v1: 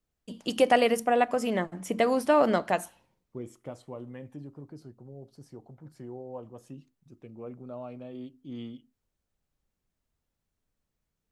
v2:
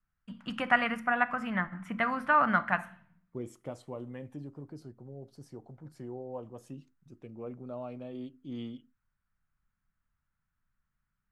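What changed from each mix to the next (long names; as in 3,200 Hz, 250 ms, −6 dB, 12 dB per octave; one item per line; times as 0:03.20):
first voice: add drawn EQ curve 200 Hz 0 dB, 410 Hz −22 dB, 1,400 Hz +9 dB, 5,700 Hz −21 dB
reverb: on, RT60 0.55 s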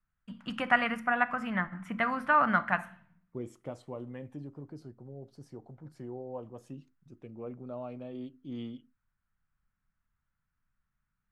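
second voice: add high-shelf EQ 6,600 Hz −6.5 dB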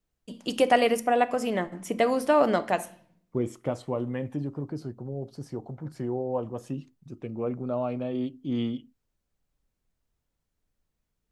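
first voice: remove drawn EQ curve 200 Hz 0 dB, 410 Hz −22 dB, 1,400 Hz +9 dB, 5,700 Hz −21 dB
second voice +11.0 dB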